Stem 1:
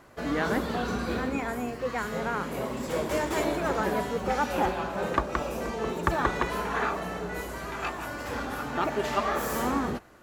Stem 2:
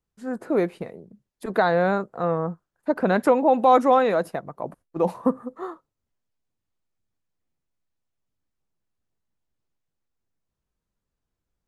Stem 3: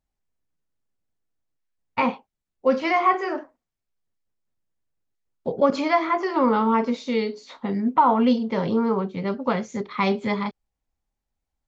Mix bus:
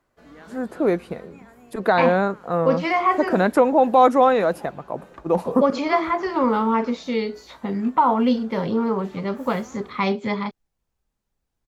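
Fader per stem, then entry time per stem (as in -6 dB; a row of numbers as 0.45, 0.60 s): -17.5, +2.0, 0.0 dB; 0.00, 0.30, 0.00 s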